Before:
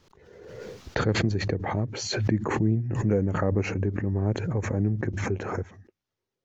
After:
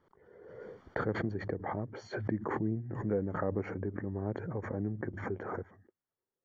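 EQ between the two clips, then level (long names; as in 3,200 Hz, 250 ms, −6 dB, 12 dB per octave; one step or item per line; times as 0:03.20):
Savitzky-Golay smoothing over 41 samples
low-shelf EQ 140 Hz −11 dB
−5.5 dB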